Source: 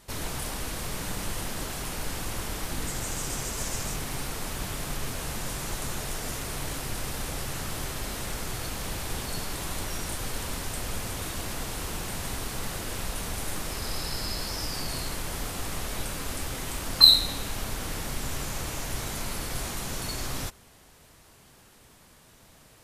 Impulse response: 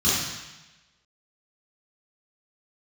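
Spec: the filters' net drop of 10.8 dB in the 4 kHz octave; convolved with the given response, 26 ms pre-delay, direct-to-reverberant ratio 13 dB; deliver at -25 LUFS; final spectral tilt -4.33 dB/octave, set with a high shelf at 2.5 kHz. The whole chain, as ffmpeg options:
-filter_complex "[0:a]highshelf=f=2500:g=-7,equalizer=f=4000:t=o:g=-6,asplit=2[s0][s1];[1:a]atrim=start_sample=2205,adelay=26[s2];[s1][s2]afir=irnorm=-1:irlink=0,volume=0.0376[s3];[s0][s3]amix=inputs=2:normalize=0,volume=3.35"

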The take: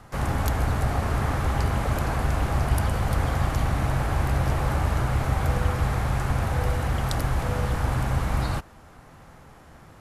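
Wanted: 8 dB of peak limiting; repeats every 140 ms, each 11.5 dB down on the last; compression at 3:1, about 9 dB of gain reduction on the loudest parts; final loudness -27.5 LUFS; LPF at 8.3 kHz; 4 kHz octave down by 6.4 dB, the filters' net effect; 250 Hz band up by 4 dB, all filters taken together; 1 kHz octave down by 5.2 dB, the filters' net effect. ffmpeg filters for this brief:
-af "lowpass=8300,equalizer=f=250:t=o:g=6,equalizer=f=1000:t=o:g=-7,equalizer=f=4000:t=o:g=-8,acompressor=threshold=0.0282:ratio=3,alimiter=level_in=1.58:limit=0.0631:level=0:latency=1,volume=0.631,aecho=1:1:140|280|420:0.266|0.0718|0.0194,volume=2.99"

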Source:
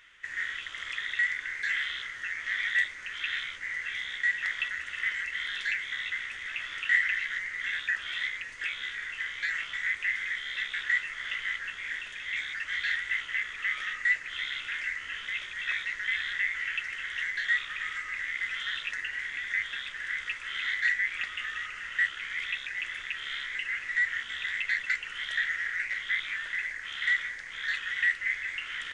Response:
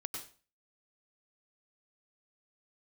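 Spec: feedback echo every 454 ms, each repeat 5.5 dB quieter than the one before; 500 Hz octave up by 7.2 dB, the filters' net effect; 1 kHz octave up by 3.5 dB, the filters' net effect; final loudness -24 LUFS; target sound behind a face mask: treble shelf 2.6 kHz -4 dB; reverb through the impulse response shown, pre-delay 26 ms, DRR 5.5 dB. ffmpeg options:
-filter_complex "[0:a]equalizer=f=500:t=o:g=7.5,equalizer=f=1000:t=o:g=5.5,aecho=1:1:454|908|1362|1816|2270|2724|3178:0.531|0.281|0.149|0.079|0.0419|0.0222|0.0118,asplit=2[s0][s1];[1:a]atrim=start_sample=2205,adelay=26[s2];[s1][s2]afir=irnorm=-1:irlink=0,volume=0.562[s3];[s0][s3]amix=inputs=2:normalize=0,highshelf=f=2600:g=-4,volume=1.58"

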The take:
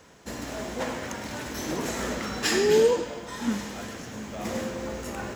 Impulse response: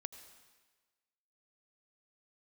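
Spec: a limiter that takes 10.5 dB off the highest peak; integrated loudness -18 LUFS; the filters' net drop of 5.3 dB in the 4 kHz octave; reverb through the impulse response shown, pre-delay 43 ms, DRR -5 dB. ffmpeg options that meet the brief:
-filter_complex "[0:a]equalizer=f=4000:t=o:g=-7.5,alimiter=limit=0.0841:level=0:latency=1,asplit=2[s0][s1];[1:a]atrim=start_sample=2205,adelay=43[s2];[s1][s2]afir=irnorm=-1:irlink=0,volume=2.66[s3];[s0][s3]amix=inputs=2:normalize=0,volume=2.66"

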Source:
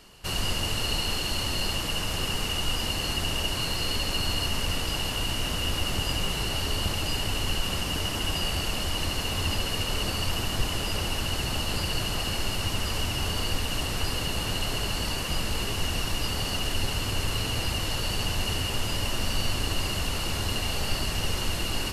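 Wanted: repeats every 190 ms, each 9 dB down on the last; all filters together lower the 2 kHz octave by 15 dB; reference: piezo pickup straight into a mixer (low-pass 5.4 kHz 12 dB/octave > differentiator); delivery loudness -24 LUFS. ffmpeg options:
-af "lowpass=5400,aderivative,equalizer=f=2000:t=o:g=-9,aecho=1:1:190|380|570|760:0.355|0.124|0.0435|0.0152,volume=5.96"

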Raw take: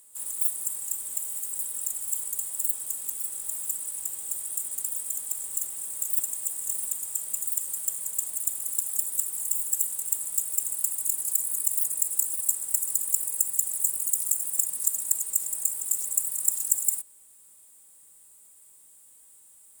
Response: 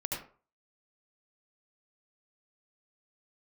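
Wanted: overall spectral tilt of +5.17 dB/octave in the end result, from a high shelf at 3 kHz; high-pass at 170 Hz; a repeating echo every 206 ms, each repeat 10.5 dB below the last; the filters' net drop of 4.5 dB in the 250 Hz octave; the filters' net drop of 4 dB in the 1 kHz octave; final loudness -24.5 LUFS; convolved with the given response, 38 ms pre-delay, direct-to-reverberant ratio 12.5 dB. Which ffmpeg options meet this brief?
-filter_complex "[0:a]highpass=170,equalizer=f=250:t=o:g=-4.5,equalizer=f=1000:t=o:g=-5.5,highshelf=f=3000:g=4.5,aecho=1:1:206|412|618:0.299|0.0896|0.0269,asplit=2[s0][s1];[1:a]atrim=start_sample=2205,adelay=38[s2];[s1][s2]afir=irnorm=-1:irlink=0,volume=0.158[s3];[s0][s3]amix=inputs=2:normalize=0,volume=0.708"

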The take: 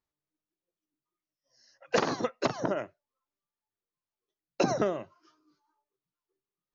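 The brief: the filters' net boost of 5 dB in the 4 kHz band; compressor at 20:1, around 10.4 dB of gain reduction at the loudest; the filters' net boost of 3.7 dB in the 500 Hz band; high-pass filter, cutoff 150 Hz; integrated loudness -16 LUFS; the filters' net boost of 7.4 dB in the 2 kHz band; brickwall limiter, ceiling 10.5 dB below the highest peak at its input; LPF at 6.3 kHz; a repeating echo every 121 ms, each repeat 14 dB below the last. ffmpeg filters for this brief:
-af "highpass=150,lowpass=6300,equalizer=f=500:t=o:g=4,equalizer=f=2000:t=o:g=8.5,equalizer=f=4000:t=o:g=4.5,acompressor=threshold=0.0501:ratio=20,alimiter=limit=0.0668:level=0:latency=1,aecho=1:1:121|242:0.2|0.0399,volume=11.2"

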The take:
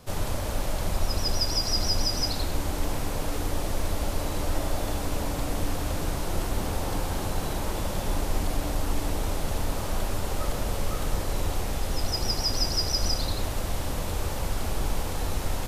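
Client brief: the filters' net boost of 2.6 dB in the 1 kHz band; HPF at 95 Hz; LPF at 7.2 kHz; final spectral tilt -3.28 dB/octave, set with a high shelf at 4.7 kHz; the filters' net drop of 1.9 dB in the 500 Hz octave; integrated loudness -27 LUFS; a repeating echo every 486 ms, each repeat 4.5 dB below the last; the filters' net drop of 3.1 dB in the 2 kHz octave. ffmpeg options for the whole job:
-af "highpass=95,lowpass=7200,equalizer=f=500:t=o:g=-4,equalizer=f=1000:t=o:g=6,equalizer=f=2000:t=o:g=-7,highshelf=f=4700:g=5,aecho=1:1:486|972|1458|1944|2430|2916|3402|3888|4374:0.596|0.357|0.214|0.129|0.0772|0.0463|0.0278|0.0167|0.01,volume=1.19"

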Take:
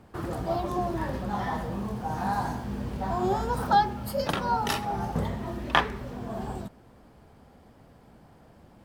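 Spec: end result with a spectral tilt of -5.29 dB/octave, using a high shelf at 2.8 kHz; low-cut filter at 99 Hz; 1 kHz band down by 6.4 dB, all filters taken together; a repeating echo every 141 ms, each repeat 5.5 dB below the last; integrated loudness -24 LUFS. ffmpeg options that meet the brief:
-af "highpass=99,equalizer=f=1000:t=o:g=-7.5,highshelf=f=2800:g=-8,aecho=1:1:141|282|423|564|705|846|987:0.531|0.281|0.149|0.079|0.0419|0.0222|0.0118,volume=2.37"

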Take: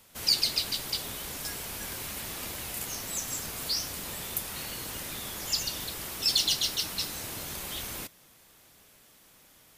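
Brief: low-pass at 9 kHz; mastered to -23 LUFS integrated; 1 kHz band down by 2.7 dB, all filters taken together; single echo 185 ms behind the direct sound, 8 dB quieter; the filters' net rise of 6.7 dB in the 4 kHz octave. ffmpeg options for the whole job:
-af "lowpass=9000,equalizer=f=1000:t=o:g=-4,equalizer=f=4000:t=o:g=8.5,aecho=1:1:185:0.398,volume=1.19"

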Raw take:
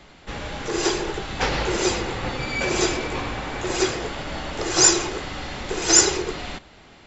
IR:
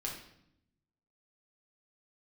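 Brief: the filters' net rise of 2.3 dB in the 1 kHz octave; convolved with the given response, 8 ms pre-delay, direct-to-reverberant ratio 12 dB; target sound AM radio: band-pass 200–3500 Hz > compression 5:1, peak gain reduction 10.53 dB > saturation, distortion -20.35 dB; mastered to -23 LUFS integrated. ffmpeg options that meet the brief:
-filter_complex "[0:a]equalizer=f=1000:t=o:g=3,asplit=2[s0][s1];[1:a]atrim=start_sample=2205,adelay=8[s2];[s1][s2]afir=irnorm=-1:irlink=0,volume=0.224[s3];[s0][s3]amix=inputs=2:normalize=0,highpass=200,lowpass=3500,acompressor=threshold=0.0447:ratio=5,asoftclip=threshold=0.0794,volume=2.82"

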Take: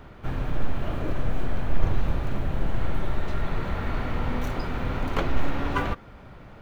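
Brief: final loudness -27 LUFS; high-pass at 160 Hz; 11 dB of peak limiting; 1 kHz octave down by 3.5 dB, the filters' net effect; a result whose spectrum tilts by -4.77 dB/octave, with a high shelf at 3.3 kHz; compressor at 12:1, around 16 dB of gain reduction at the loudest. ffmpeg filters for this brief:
-af "highpass=160,equalizer=f=1000:t=o:g=-5,highshelf=f=3300:g=4,acompressor=threshold=0.01:ratio=12,volume=8.91,alimiter=limit=0.133:level=0:latency=1"

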